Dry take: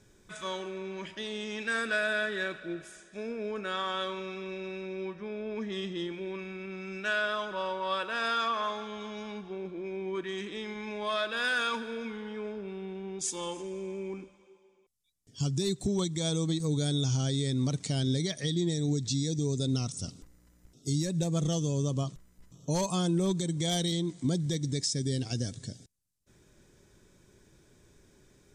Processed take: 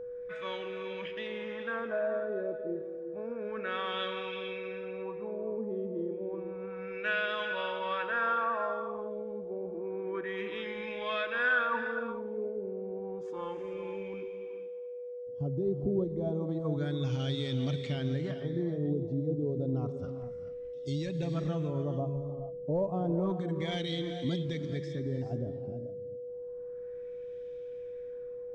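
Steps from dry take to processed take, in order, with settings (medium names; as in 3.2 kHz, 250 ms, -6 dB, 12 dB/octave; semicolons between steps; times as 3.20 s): LFO low-pass sine 0.3 Hz 490–3000 Hz; gated-style reverb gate 460 ms rising, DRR 7.5 dB; whistle 490 Hz -34 dBFS; trim -4.5 dB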